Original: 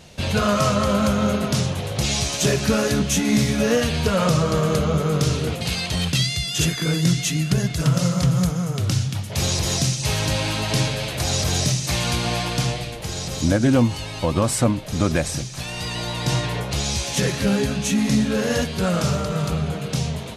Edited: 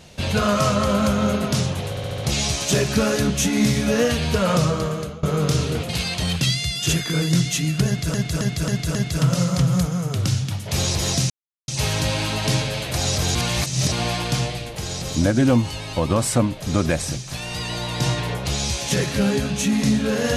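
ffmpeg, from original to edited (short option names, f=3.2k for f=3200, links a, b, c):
-filter_complex "[0:a]asplit=13[a][b][c][d][e][f][g][h][i][j][k][l][m];[a]atrim=end=1.972[n];[b]atrim=start=1.898:end=1.972[o];[c]atrim=start=1.898:end=1.972[p];[d]atrim=start=1.898:end=1.972[q];[e]atrim=start=1.898:end=4.95,asetpts=PTS-STARTPTS,afade=t=out:st=2.442:d=0.61:silence=0.0794328[r];[f]atrim=start=4.95:end=7.862,asetpts=PTS-STARTPTS,afade=t=in:d=0.004:c=hsin:silence=0.0794328[s];[g]atrim=start=7.588:end=7.862[t];[h]atrim=start=7.588:end=7.862[u];[i]atrim=start=7.588:end=7.862[v];[j]atrim=start=7.588:end=9.94,asetpts=PTS-STARTPTS,afade=t=out:st=2.348:d=0.004:c=hsin,apad=pad_dur=0.38[w];[k]atrim=start=9.94:end=11.612,asetpts=PTS-STARTPTS,afade=t=in:d=0.004:c=hsin[x];[l]atrim=start=11.608:end=12.182,asetpts=PTS-STARTPTS,areverse[y];[m]atrim=start=12.178[z];[n][o]acrossfade=d=0.004:c1=hsin:c2=hsin[aa];[aa][p]acrossfade=d=0.004:c1=hsin:c2=hsin[ab];[ab][q]acrossfade=d=0.004:c1=hsin:c2=hsin[ac];[r][s]concat=n=2:v=0:a=1[ad];[ac][ad]acrossfade=d=0.004:c1=hsin:c2=hsin[ae];[ae][t]acrossfade=d=0.004:c1=hsin:c2=hsin[af];[af][u]acrossfade=d=0.004:c1=hsin:c2=hsin[ag];[ag][v]acrossfade=d=0.004:c1=hsin:c2=hsin[ah];[w][x]concat=n=2:v=0:a=1[ai];[ah][ai]acrossfade=d=0.004:c1=hsin:c2=hsin[aj];[aj][y]acrossfade=d=0.004:c1=hsin:c2=hsin[ak];[ak][z]acrossfade=d=0.004:c1=hsin:c2=hsin"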